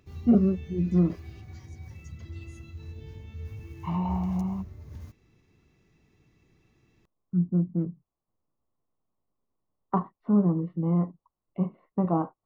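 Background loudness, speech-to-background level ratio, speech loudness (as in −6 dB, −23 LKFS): −42.5 LKFS, 15.0 dB, −27.5 LKFS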